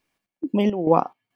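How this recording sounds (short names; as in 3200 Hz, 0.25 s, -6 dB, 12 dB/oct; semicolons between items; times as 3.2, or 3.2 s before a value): chopped level 2.3 Hz, depth 65%, duty 60%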